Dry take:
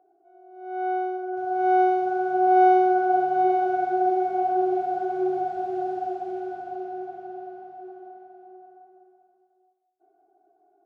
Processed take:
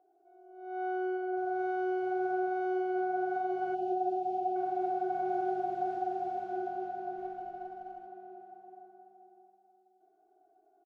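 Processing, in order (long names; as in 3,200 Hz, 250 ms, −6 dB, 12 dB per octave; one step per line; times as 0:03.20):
comb and all-pass reverb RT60 3.3 s, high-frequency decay 0.65×, pre-delay 60 ms, DRR 3 dB
downward compressor 6 to 1, threshold −22 dBFS, peak gain reduction 10 dB
on a send: single-tap delay 152 ms −6.5 dB
0:03.75–0:04.56: on the sum: gain on a spectral selection 840–2,400 Hz −19 dB
0:07.18–0:08.07: windowed peak hold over 3 samples
level −6 dB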